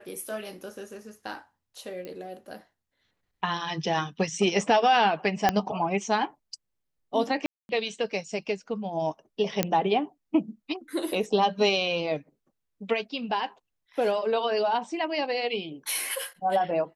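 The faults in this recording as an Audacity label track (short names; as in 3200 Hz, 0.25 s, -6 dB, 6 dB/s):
2.050000	2.050000	pop -25 dBFS
5.490000	5.490000	pop -7 dBFS
7.460000	7.690000	gap 0.231 s
9.630000	9.630000	pop -7 dBFS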